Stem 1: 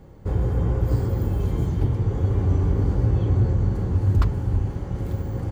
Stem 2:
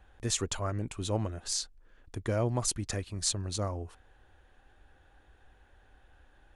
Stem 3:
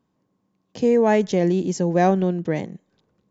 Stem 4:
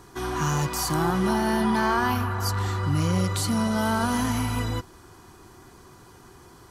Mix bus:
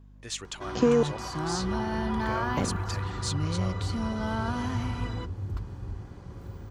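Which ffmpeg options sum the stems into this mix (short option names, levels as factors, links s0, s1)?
-filter_complex "[0:a]acrossover=split=240|3000[s0][s1][s2];[s1]acompressor=threshold=0.0316:ratio=6[s3];[s0][s3][s2]amix=inputs=3:normalize=0,adelay=1350,volume=0.178[s4];[1:a]agate=range=0.2:threshold=0.00224:ratio=16:detection=peak,equalizer=f=3200:w=0.52:g=6.5,asplit=2[s5][s6];[s6]highpass=f=720:p=1,volume=2.24,asoftclip=type=tanh:threshold=0.335[s7];[s5][s7]amix=inputs=2:normalize=0,lowpass=f=5800:p=1,volume=0.501,volume=0.355[s8];[2:a]acompressor=threshold=0.0891:ratio=6,volume=1.33,asplit=3[s9][s10][s11];[s9]atrim=end=1.03,asetpts=PTS-STARTPTS,afade=t=out:st=1.026:d=0.004:c=hsin[s12];[s10]atrim=start=1.03:end=2.57,asetpts=PTS-STARTPTS,volume=0[s13];[s11]atrim=start=2.57,asetpts=PTS-STARTPTS,afade=t=in:d=0.004:c=hsin[s14];[s12][s13][s14]concat=n=3:v=0:a=1[s15];[3:a]lowpass=4700,acompressor=mode=upward:threshold=0.00794:ratio=2.5,adelay=450,volume=0.447[s16];[s4][s8][s15][s16]amix=inputs=4:normalize=0,aeval=exprs='val(0)+0.00316*(sin(2*PI*50*n/s)+sin(2*PI*2*50*n/s)/2+sin(2*PI*3*50*n/s)/3+sin(2*PI*4*50*n/s)/4+sin(2*PI*5*50*n/s)/5)':c=same"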